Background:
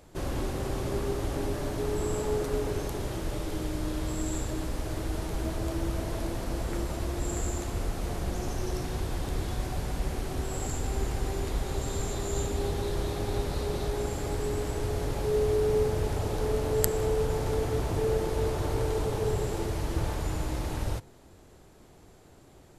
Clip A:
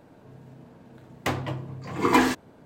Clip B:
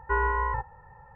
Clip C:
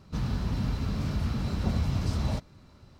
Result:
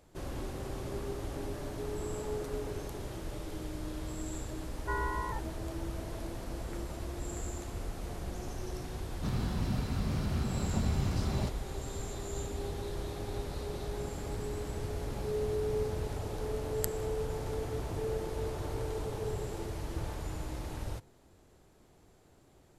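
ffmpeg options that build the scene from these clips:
ffmpeg -i bed.wav -i cue0.wav -i cue1.wav -i cue2.wav -filter_complex "[3:a]asplit=2[link_01][link_02];[0:a]volume=-7.5dB[link_03];[link_01]highpass=57[link_04];[link_02]acompressor=threshold=-29dB:ratio=6:attack=3.2:release=140:knee=1:detection=peak[link_05];[2:a]atrim=end=1.15,asetpts=PTS-STARTPTS,volume=-9dB,afade=type=in:duration=0.004:curve=hsin,afade=type=out:start_time=1.146:duration=0.004:curve=hsin,adelay=4780[link_06];[link_04]atrim=end=2.99,asetpts=PTS-STARTPTS,volume=-3dB,afade=type=in:duration=0.004:curve=hsin,afade=type=out:start_time=2.986:duration=0.004:curve=hsin,adelay=9100[link_07];[link_05]atrim=end=2.99,asetpts=PTS-STARTPTS,volume=-12.5dB,afade=type=in:duration=0.004:curve=hsin,afade=type=out:start_time=2.986:duration=0.004:curve=hsin,adelay=13780[link_08];[link_03][link_06][link_07][link_08]amix=inputs=4:normalize=0" out.wav

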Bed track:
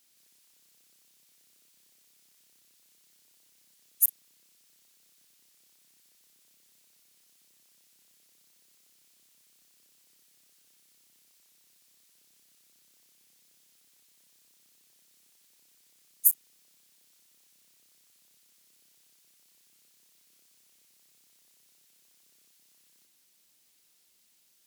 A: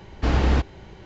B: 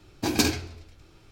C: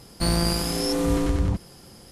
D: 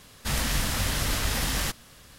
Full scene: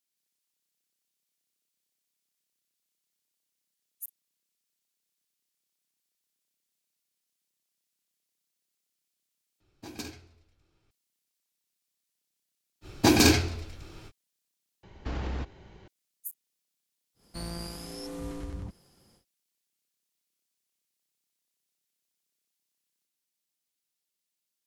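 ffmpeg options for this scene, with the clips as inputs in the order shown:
ffmpeg -i bed.wav -i cue0.wav -i cue1.wav -i cue2.wav -filter_complex "[2:a]asplit=2[link_01][link_02];[0:a]volume=-18.5dB[link_03];[link_02]alimiter=level_in=14.5dB:limit=-1dB:release=50:level=0:latency=1[link_04];[1:a]acompressor=threshold=-26dB:ratio=4:attack=44:release=37:knee=1:detection=rms[link_05];[link_03]asplit=3[link_06][link_07][link_08];[link_06]atrim=end=9.604[link_09];[link_01]atrim=end=1.31,asetpts=PTS-STARTPTS,volume=-17.5dB[link_10];[link_07]atrim=start=10.906:end=14.834[link_11];[link_05]atrim=end=1.05,asetpts=PTS-STARTPTS,volume=-8.5dB[link_12];[link_08]atrim=start=15.876[link_13];[link_04]atrim=end=1.31,asetpts=PTS-STARTPTS,volume=-7dB,afade=type=in:duration=0.05,afade=type=out:start_time=1.26:duration=0.05,adelay=12810[link_14];[3:a]atrim=end=2.11,asetpts=PTS-STARTPTS,volume=-15.5dB,afade=type=in:duration=0.1,afade=type=out:start_time=2.01:duration=0.1,adelay=17140[link_15];[link_09][link_10]acrossfade=duration=0.004:curve1=hsin:curve2=hsin[link_16];[link_16][link_11]acrossfade=duration=0.004:curve1=hsin:curve2=hsin[link_17];[link_17][link_12]acrossfade=duration=0.004:curve1=hsin:curve2=hsin[link_18];[link_18][link_13]acrossfade=duration=0.004:curve1=hsin:curve2=hsin[link_19];[link_19][link_14][link_15]amix=inputs=3:normalize=0" out.wav

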